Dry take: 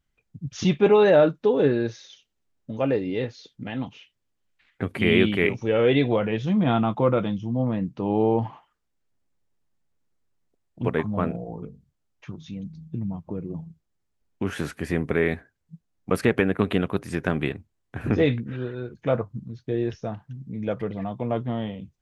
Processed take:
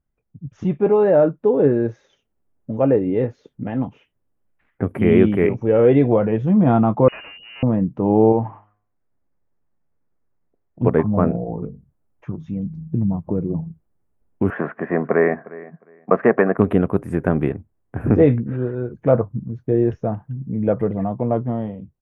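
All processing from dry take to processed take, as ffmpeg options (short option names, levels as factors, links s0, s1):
-filter_complex "[0:a]asettb=1/sr,asplit=3[s0][s1][s2];[s0]atrim=end=7.084[s3];[s1]atrim=start=7.08:end=7.63,asetpts=PTS-STARTPTS,afade=t=in:d=0.004:c=qsin,afade=t=out:st=0.546:d=0.004:c=qsin,lowshelf=f=79:g=8,volume=29.9,asoftclip=hard,volume=0.0335,lowpass=f=2600:t=q:w=0.5098,lowpass=f=2600:t=q:w=0.6013,lowpass=f=2600:t=q:w=0.9,lowpass=f=2600:t=q:w=2.563,afreqshift=-3000[s4];[s2]atrim=start=7.626[s5];[s3][s4]acrossfade=d=0.004:c1=hsin:c2=qsin[s6];[s6][s5]acrossfade=d=0.004:c1=qsin:c2=hsin,asettb=1/sr,asplit=3[s7][s8][s9];[s7]atrim=end=8.324[s10];[s8]atrim=start=8.32:end=10.82,asetpts=PTS-STARTPTS,afade=t=in:d=0.004:c=qsin,afade=t=out:st=2.496:d=0.004:c=qsin,lowpass=f=2500:w=0.5412,lowpass=f=2500:w=1.3066,tiltshelf=f=1400:g=-4.5,bandreject=f=103.8:t=h:w=4,bandreject=f=207.6:t=h:w=4,bandreject=f=311.4:t=h:w=4,bandreject=f=415.2:t=h:w=4,bandreject=f=519:t=h:w=4,bandreject=f=622.8:t=h:w=4,bandreject=f=726.6:t=h:w=4,bandreject=f=830.4:t=h:w=4,bandreject=f=934.2:t=h:w=4,bandreject=f=1038:t=h:w=4,bandreject=f=1141.8:t=h:w=4,bandreject=f=1245.6:t=h:w=4,bandreject=f=1349.4:t=h:w=4,bandreject=f=1453.2:t=h:w=4,bandreject=f=1557:t=h:w=4,bandreject=f=1660.8:t=h:w=4,bandreject=f=1764.6:t=h:w=4,bandreject=f=1868.4:t=h:w=4,bandreject=f=1972.2:t=h:w=4,bandreject=f=2076:t=h:w=4,bandreject=f=2179.8:t=h:w=4,bandreject=f=2283.6:t=h:w=4,bandreject=f=2387.4:t=h:w=4,bandreject=f=2491.2:t=h:w=4,bandreject=f=2595:t=h:w=4,bandreject=f=2698.8:t=h:w=4,bandreject=f=2802.6:t=h:w=4,bandreject=f=2906.4:t=h:w=4,bandreject=f=3010.2:t=h:w=4,bandreject=f=3114:t=h:w=4,bandreject=f=3217.8:t=h:w=4,bandreject=f=3321.6:t=h:w=4,bandreject=f=3425.4:t=h:w=4[s11];[s9]atrim=start=10.816[s12];[s10][s11]acrossfade=d=0.004:c1=hsin:c2=qsin[s13];[s13][s12]acrossfade=d=0.004:c1=qsin:c2=hsin,asettb=1/sr,asplit=3[s14][s15][s16];[s14]atrim=end=14.504[s17];[s15]atrim=start=14.5:end=16.58,asetpts=PTS-STARTPTS,afade=t=in:d=0.004:c=qsin,afade=t=out:st=2.076:d=0.004:c=qsin,highpass=f=170:w=0.5412,highpass=f=170:w=1.3066,equalizer=f=170:t=q:w=4:g=-3,equalizer=f=290:t=q:w=4:g=-6,equalizer=f=670:t=q:w=4:g=9,equalizer=f=1100:t=q:w=4:g=10,equalizer=f=1800:t=q:w=4:g=7,lowpass=f=2700:w=0.5412,lowpass=f=2700:w=1.3066,aecho=1:1:357|714:0.112|0.0213,atrim=end_sample=91728[s18];[s16]atrim=start=16.576[s19];[s17][s18]acrossfade=d=0.004:c1=hsin:c2=qsin[s20];[s20][s19]acrossfade=d=0.004:c1=qsin:c2=hsin,firequalizer=gain_entry='entry(600,0);entry(4200,-28);entry(9600,-10)':delay=0.05:min_phase=1,dynaudnorm=f=330:g=9:m=3.76"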